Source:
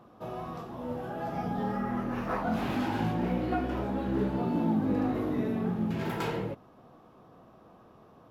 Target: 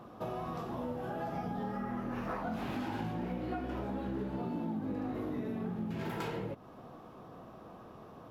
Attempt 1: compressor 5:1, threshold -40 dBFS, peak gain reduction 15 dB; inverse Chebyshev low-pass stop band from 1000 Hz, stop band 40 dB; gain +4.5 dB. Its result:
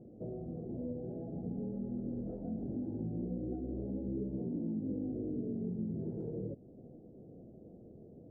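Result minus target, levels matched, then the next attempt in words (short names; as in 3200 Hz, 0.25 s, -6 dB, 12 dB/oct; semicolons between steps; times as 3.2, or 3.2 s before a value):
1000 Hz band -19.5 dB
compressor 5:1, threshold -40 dBFS, peak gain reduction 15 dB; gain +4.5 dB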